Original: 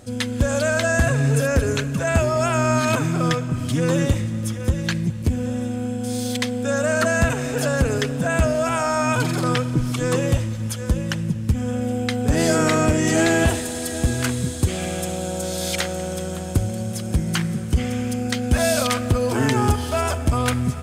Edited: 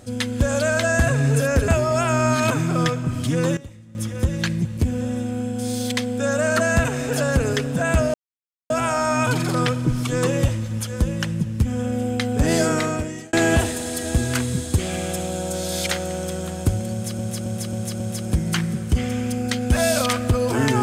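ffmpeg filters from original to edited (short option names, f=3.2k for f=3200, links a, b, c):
-filter_complex "[0:a]asplit=10[a][b][c][d][e][f][g][h][i][j];[a]atrim=end=1.682[k];[b]atrim=start=2.128:end=4.02,asetpts=PTS-STARTPTS,afade=t=out:st=1.412:d=0.48:c=log:silence=0.105925[l];[c]atrim=start=4.02:end=4.4,asetpts=PTS-STARTPTS,volume=-19.5dB[m];[d]atrim=start=4.4:end=8.59,asetpts=PTS-STARTPTS,afade=t=in:d=0.48:c=log:silence=0.105925,afade=t=out:st=4.186:d=0.004:c=hsin,apad=pad_dur=0.56[n];[e]atrim=start=8.59:end=13.22,asetpts=PTS-STARTPTS,afade=t=in:d=0.004:c=hsin,afade=t=out:st=3.84:d=0.79[o];[f]atrim=start=13.22:end=17.082,asetpts=PTS-STARTPTS,afade=t=in:d=0.004:c=hsin[p];[g]atrim=start=16.808:end=17.082[q];[h]atrim=start=16.808:end=17.082[r];[i]atrim=start=16.808:end=17.082[s];[j]atrim=start=16.808[t];[l][m][n][o][p]concat=n=5:v=0:a=1[u];[k][u]acrossfade=d=0.004:c1=hsin:c2=hsin[v];[v][q]acrossfade=d=0.004:c1=hsin:c2=hsin[w];[w][r]acrossfade=d=0.004:c1=hsin:c2=hsin[x];[x][s]acrossfade=d=0.004:c1=hsin:c2=hsin[y];[y][t]acrossfade=d=0.004:c1=hsin:c2=hsin"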